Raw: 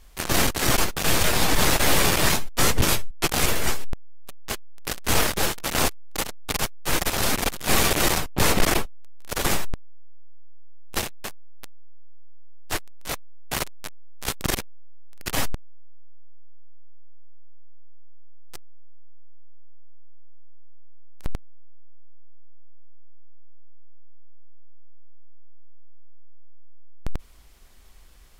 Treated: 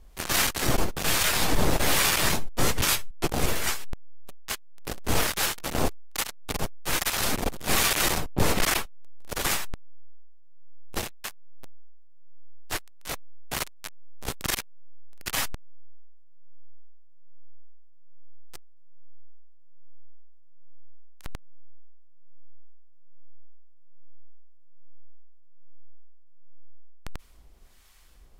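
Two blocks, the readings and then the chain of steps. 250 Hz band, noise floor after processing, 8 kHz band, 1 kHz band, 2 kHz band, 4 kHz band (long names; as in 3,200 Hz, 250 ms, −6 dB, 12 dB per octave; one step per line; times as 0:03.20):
−4.0 dB, −42 dBFS, −2.5 dB, −3.5 dB, −2.5 dB, −2.5 dB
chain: two-band tremolo in antiphase 1.2 Hz, depth 70%, crossover 890 Hz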